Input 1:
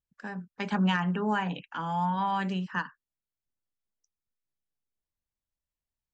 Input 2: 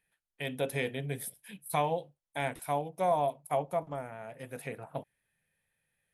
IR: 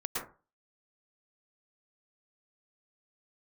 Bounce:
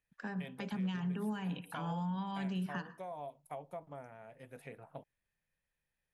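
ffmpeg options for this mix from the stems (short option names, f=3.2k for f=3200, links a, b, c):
-filter_complex "[0:a]acrossover=split=350|3000[a][b][c];[b]acompressor=threshold=-42dB:ratio=4[d];[a][d][c]amix=inputs=3:normalize=0,volume=0dB,asplit=2[e][f];[f]volume=-19.5dB[g];[1:a]acompressor=threshold=-31dB:ratio=6,volume=-9dB[h];[2:a]atrim=start_sample=2205[i];[g][i]afir=irnorm=-1:irlink=0[j];[e][h][j]amix=inputs=3:normalize=0,highshelf=f=6.2k:g=-8,asoftclip=type=hard:threshold=-19dB,alimiter=level_in=6dB:limit=-24dB:level=0:latency=1:release=442,volume=-6dB"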